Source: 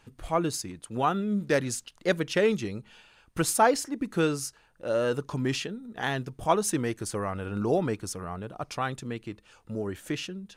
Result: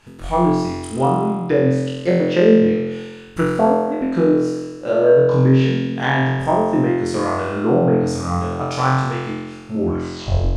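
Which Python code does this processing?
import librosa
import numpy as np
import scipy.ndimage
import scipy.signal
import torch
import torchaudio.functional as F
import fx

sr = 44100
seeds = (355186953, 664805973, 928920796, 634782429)

y = fx.tape_stop_end(x, sr, length_s=0.82)
y = fx.env_lowpass_down(y, sr, base_hz=460.0, full_db=-20.5)
y = fx.room_flutter(y, sr, wall_m=3.9, rt60_s=1.3)
y = y * 10.0 ** (6.5 / 20.0)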